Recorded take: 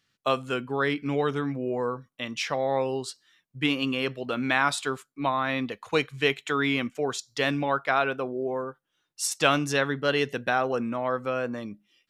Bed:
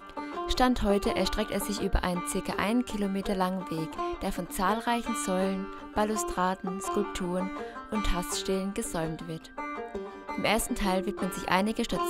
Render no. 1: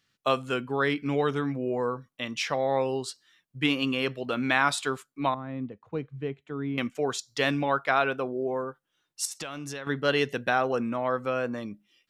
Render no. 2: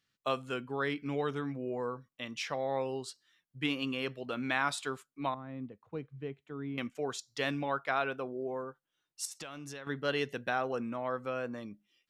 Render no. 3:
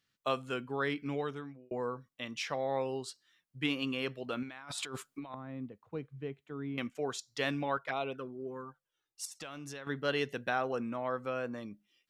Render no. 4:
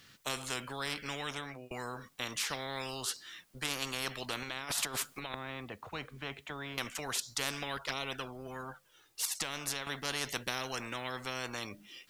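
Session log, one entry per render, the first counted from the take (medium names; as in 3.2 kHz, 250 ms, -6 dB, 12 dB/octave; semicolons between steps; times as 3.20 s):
5.34–6.78 s: band-pass filter 110 Hz, Q 0.58; 9.25–9.87 s: compression 10:1, threshold -33 dBFS
trim -7.5 dB
1.05–1.71 s: fade out; 4.43–5.34 s: compressor with a negative ratio -44 dBFS; 7.77–9.42 s: touch-sensitive flanger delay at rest 2.6 ms, full sweep at -28.5 dBFS
spectrum-flattening compressor 4:1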